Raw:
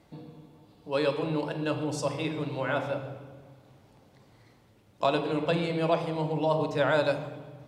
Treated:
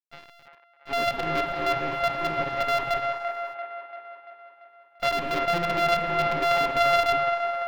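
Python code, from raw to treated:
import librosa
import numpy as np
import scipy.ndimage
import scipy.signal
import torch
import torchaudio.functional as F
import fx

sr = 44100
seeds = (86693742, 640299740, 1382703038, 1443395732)

y = np.r_[np.sort(x[:len(x) // 64 * 64].reshape(-1, 64), axis=1).ravel(), x[len(x) // 64 * 64:]]
y = fx.tilt_eq(y, sr, slope=3.5)
y = fx.spec_topn(y, sr, count=64)
y = fx.quant_companded(y, sr, bits=2)
y = fx.air_absorb(y, sr, metres=340.0)
y = fx.echo_wet_bandpass(y, sr, ms=341, feedback_pct=55, hz=1100.0, wet_db=-4.5)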